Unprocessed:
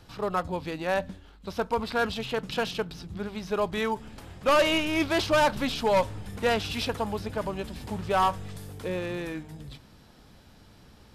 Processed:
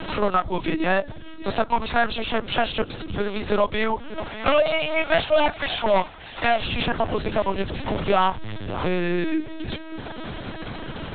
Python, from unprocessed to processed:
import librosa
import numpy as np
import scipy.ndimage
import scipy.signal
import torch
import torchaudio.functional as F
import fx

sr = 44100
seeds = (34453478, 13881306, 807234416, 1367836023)

y = fx.highpass(x, sr, hz=480.0, slope=24, at=(4.26, 6.6))
y = y + 0.98 * np.pad(y, (int(3.0 * sr / 1000.0), 0))[:len(y)]
y = y + 10.0 ** (-22.5 / 20.0) * np.pad(y, (int(585 * sr / 1000.0), 0))[:len(y)]
y = fx.lpc_vocoder(y, sr, seeds[0], excitation='pitch_kept', order=10)
y = fx.band_squash(y, sr, depth_pct=70)
y = F.gain(torch.from_numpy(y), 4.0).numpy()